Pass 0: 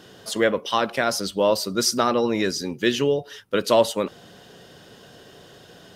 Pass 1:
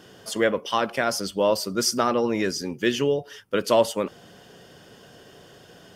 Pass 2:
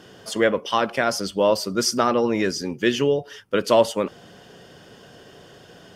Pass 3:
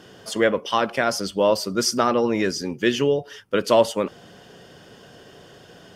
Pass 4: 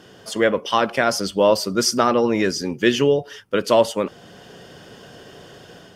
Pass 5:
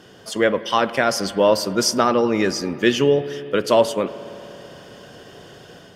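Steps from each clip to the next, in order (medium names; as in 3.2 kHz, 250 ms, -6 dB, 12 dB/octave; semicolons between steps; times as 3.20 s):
band-stop 3.9 kHz, Q 6.5; trim -1.5 dB
treble shelf 10 kHz -8 dB; trim +2.5 dB
no audible change
level rider gain up to 4 dB
spring tank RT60 3.4 s, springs 56 ms, chirp 55 ms, DRR 14.5 dB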